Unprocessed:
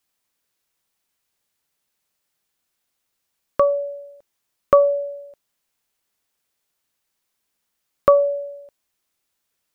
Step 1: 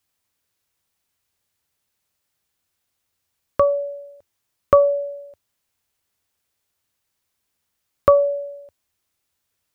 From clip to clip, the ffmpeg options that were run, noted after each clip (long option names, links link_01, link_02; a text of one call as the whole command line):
ffmpeg -i in.wav -af "equalizer=frequency=86:width_type=o:width=0.82:gain=11.5" out.wav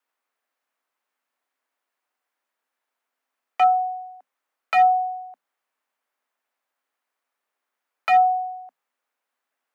ffmpeg -i in.wav -filter_complex "[0:a]aeval=exprs='0.251*(abs(mod(val(0)/0.251+3,4)-2)-1)':channel_layout=same,afreqshift=170,acrossover=split=500 2100:gain=0.0891 1 0.158[link_01][link_02][link_03];[link_01][link_02][link_03]amix=inputs=3:normalize=0,volume=3.5dB" out.wav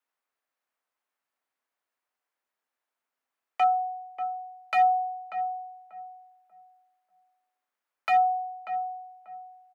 ffmpeg -i in.wav -filter_complex "[0:a]asplit=2[link_01][link_02];[link_02]adelay=589,lowpass=frequency=810:poles=1,volume=-6.5dB,asplit=2[link_03][link_04];[link_04]adelay=589,lowpass=frequency=810:poles=1,volume=0.33,asplit=2[link_05][link_06];[link_06]adelay=589,lowpass=frequency=810:poles=1,volume=0.33,asplit=2[link_07][link_08];[link_08]adelay=589,lowpass=frequency=810:poles=1,volume=0.33[link_09];[link_01][link_03][link_05][link_07][link_09]amix=inputs=5:normalize=0,volume=-5.5dB" out.wav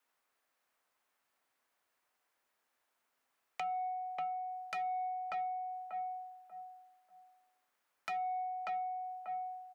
ffmpeg -i in.wav -af "alimiter=limit=-23.5dB:level=0:latency=1:release=220,acompressor=threshold=-42dB:ratio=5,asoftclip=type=tanh:threshold=-36.5dB,volume=6dB" out.wav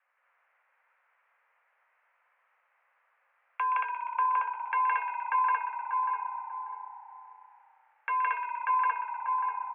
ffmpeg -i in.wav -filter_complex "[0:a]asplit=2[link_01][link_02];[link_02]asplit=8[link_03][link_04][link_05][link_06][link_07][link_08][link_09][link_10];[link_03]adelay=122,afreqshift=-31,volume=-10.5dB[link_11];[link_04]adelay=244,afreqshift=-62,volume=-14.2dB[link_12];[link_05]adelay=366,afreqshift=-93,volume=-18dB[link_13];[link_06]adelay=488,afreqshift=-124,volume=-21.7dB[link_14];[link_07]adelay=610,afreqshift=-155,volume=-25.5dB[link_15];[link_08]adelay=732,afreqshift=-186,volume=-29.2dB[link_16];[link_09]adelay=854,afreqshift=-217,volume=-33dB[link_17];[link_10]adelay=976,afreqshift=-248,volume=-36.7dB[link_18];[link_11][link_12][link_13][link_14][link_15][link_16][link_17][link_18]amix=inputs=8:normalize=0[link_19];[link_01][link_19]amix=inputs=2:normalize=0,highpass=frequency=170:width_type=q:width=0.5412,highpass=frequency=170:width_type=q:width=1.307,lowpass=frequency=2100:width_type=q:width=0.5176,lowpass=frequency=2100:width_type=q:width=0.7071,lowpass=frequency=2100:width_type=q:width=1.932,afreqshift=280,asplit=2[link_20][link_21];[link_21]aecho=0:1:166.2|227.4:1|0.891[link_22];[link_20][link_22]amix=inputs=2:normalize=0,volume=8.5dB" out.wav